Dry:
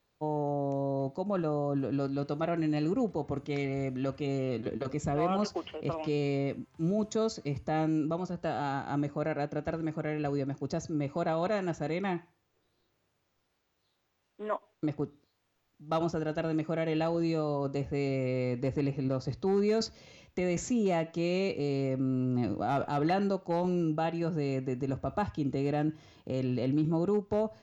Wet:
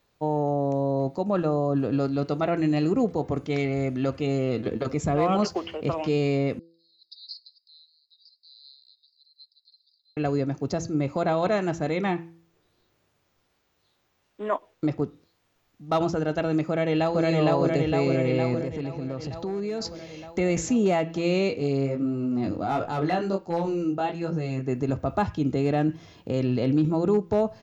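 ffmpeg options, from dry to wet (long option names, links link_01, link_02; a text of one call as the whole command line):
ffmpeg -i in.wav -filter_complex "[0:a]asettb=1/sr,asplit=3[link_01][link_02][link_03];[link_01]atrim=end=6.594[link_04];[link_02]atrim=start=6.59:end=10.17,asetpts=PTS-STARTPTS,afade=type=in:duration=0.004:curve=qsin,afade=type=out:start_time=3.576:duration=0.004:curve=qsin,asuperpass=centerf=4400:order=12:qfactor=3.5[link_05];[link_03]atrim=start=10.166[link_06];[link_04][link_05]acrossfade=duration=0.004:curve1=hsin:curve2=qsin[link_07];[link_07][link_06]acrossfade=duration=0.004:curve1=qsin:curve2=hsin,asplit=2[link_08][link_09];[link_09]afade=type=in:start_time=16.68:duration=0.01,afade=type=out:start_time=17.23:duration=0.01,aecho=0:1:460|920|1380|1840|2300|2760|3220|3680|4140|4600|5060|5520:1|0.7|0.49|0.343|0.2401|0.16807|0.117649|0.0823543|0.057648|0.0403536|0.0282475|0.0197733[link_10];[link_08][link_10]amix=inputs=2:normalize=0,asettb=1/sr,asplit=3[link_11][link_12][link_13];[link_11]atrim=end=18.614[link_14];[link_12]atrim=start=18.61:end=19.85,asetpts=PTS-STARTPTS,afade=type=in:duration=0.004:curve=qsin,afade=type=out:start_time=1.236:duration=0.004:curve=qsin,acompressor=threshold=-36dB:ratio=3:attack=3.2:release=140:knee=1:detection=peak[link_15];[link_13]atrim=start=19.846[link_16];[link_14][link_15]acrossfade=duration=0.004:curve1=hsin:curve2=qsin[link_17];[link_17][link_16]acrossfade=duration=0.004:curve1=qsin:curve2=hsin,asplit=3[link_18][link_19][link_20];[link_18]afade=type=out:start_time=21.49:duration=0.02[link_21];[link_19]flanger=delay=18:depth=4.1:speed=1.4,afade=type=in:start_time=21.49:duration=0.02,afade=type=out:start_time=24.67:duration=0.02[link_22];[link_20]afade=type=in:start_time=24.67:duration=0.02[link_23];[link_21][link_22][link_23]amix=inputs=3:normalize=0,bandreject=frequency=166.8:width_type=h:width=4,bandreject=frequency=333.6:width_type=h:width=4,bandreject=frequency=500.4:width_type=h:width=4,volume=6.5dB" out.wav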